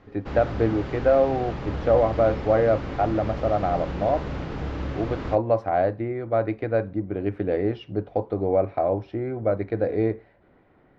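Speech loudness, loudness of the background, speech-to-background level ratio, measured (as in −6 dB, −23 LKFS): −24.5 LKFS, −32.5 LKFS, 8.0 dB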